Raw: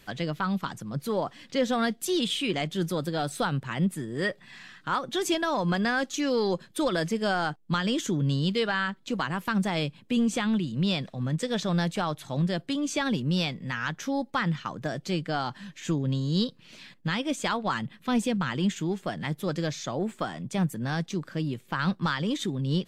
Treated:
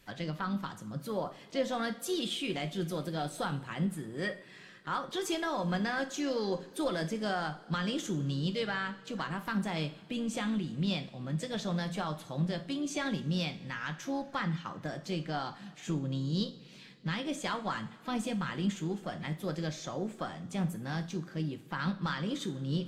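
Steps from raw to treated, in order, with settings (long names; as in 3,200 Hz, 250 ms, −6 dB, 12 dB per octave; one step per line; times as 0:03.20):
coupled-rooms reverb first 0.4 s, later 3.2 s, from −20 dB, DRR 6.5 dB
pitch-shifted copies added +4 semitones −17 dB
level −7.5 dB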